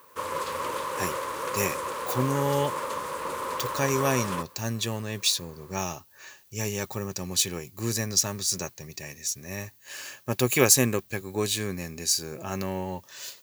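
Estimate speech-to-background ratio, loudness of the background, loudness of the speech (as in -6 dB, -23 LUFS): 4.5 dB, -32.0 LUFS, -27.5 LUFS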